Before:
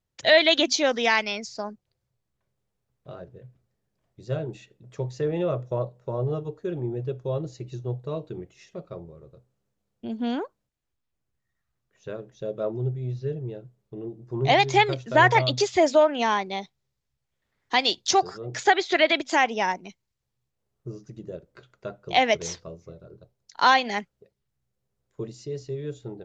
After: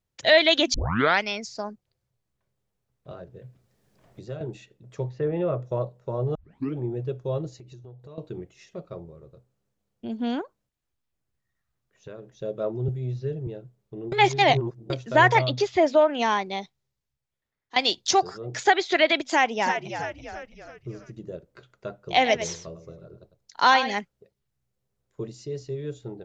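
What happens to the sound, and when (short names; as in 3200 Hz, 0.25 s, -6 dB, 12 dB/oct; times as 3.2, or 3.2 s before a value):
0.74 tape start 0.48 s
3.11–4.41 three-band squash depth 70%
5.09–5.62 LPF 2300 Hz
6.35 tape start 0.42 s
7.49–8.18 compressor 5:1, threshold -43 dBFS
10.41–12.35 compressor, threshold -36 dBFS
12.88–13.47 three-band squash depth 40%
14.12–14.9 reverse
15.45–16.1 air absorption 140 m
16.61–17.76 fade out, to -17 dB
19.23–21.15 frequency-shifting echo 0.331 s, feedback 48%, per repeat -81 Hz, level -8 dB
22.03–23.94 echo 0.101 s -11 dB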